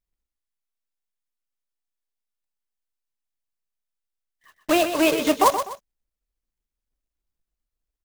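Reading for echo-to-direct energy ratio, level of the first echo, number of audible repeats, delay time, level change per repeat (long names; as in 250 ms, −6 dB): −8.5 dB, −9.0 dB, 2, 125 ms, −9.5 dB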